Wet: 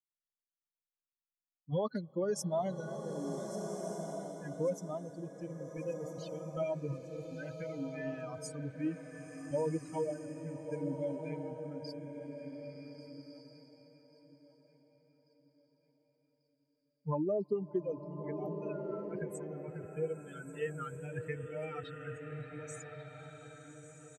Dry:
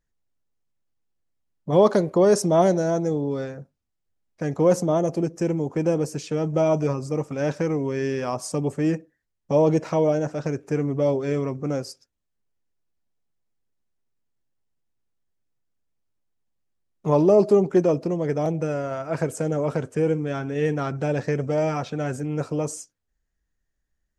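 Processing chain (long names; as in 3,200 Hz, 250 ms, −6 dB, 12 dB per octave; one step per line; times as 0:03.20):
spectral dynamics exaggerated over time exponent 3
downward compressor, threshold −25 dBFS, peak gain reduction 10 dB
on a send: repeating echo 1,140 ms, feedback 44%, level −15.5 dB
on the sum: slow-attack reverb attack 1,550 ms, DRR 4.5 dB
level −5 dB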